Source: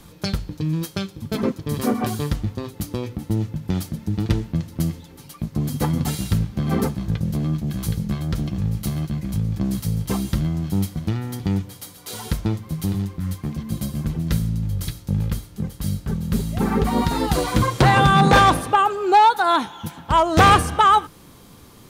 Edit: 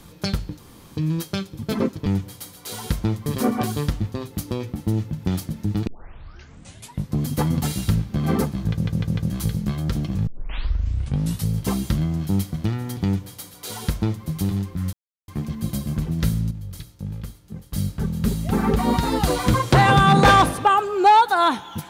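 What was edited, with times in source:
0.59 s: insert room tone 0.37 s
4.30 s: tape start 1.27 s
7.13 s: stutter in place 0.15 s, 4 plays
8.70 s: tape start 1.20 s
11.47–12.67 s: copy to 1.69 s
13.36 s: insert silence 0.35 s
14.59–15.81 s: gain -9 dB

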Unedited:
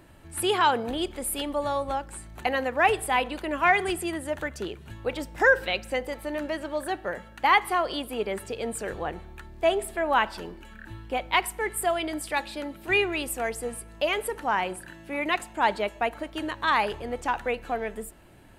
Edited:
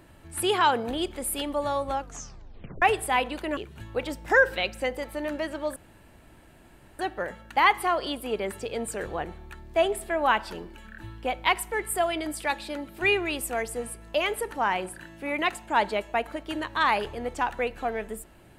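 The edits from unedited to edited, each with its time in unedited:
1.98 s: tape stop 0.84 s
3.57–4.67 s: delete
6.86 s: insert room tone 1.23 s

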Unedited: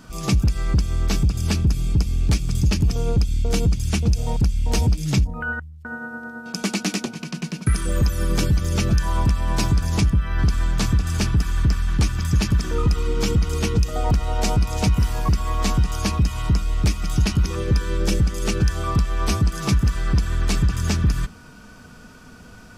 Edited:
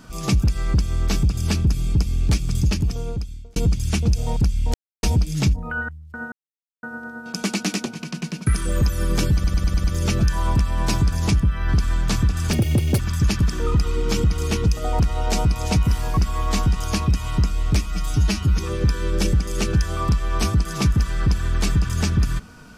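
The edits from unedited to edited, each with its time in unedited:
2.59–3.56 s: fade out
4.74 s: insert silence 0.29 s
6.03 s: insert silence 0.51 s
8.54 s: stutter 0.10 s, 6 plays
11.23–12.11 s: speed 189%
16.97–17.46 s: stretch 1.5×

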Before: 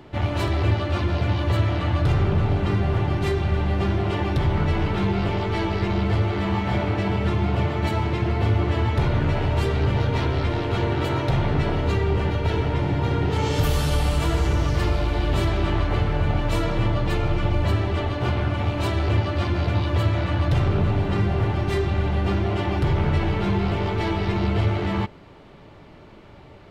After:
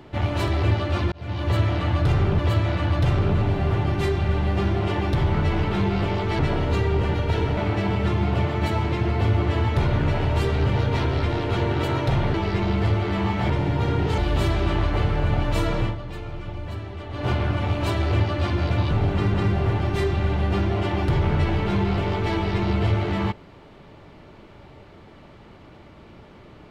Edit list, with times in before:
1.12–1.53 s: fade in
2.39–2.82 s: swap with 19.88–21.08 s
5.62–6.78 s: swap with 11.55–12.73 s
13.41–15.15 s: delete
16.77–18.23 s: dip -11 dB, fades 0.17 s

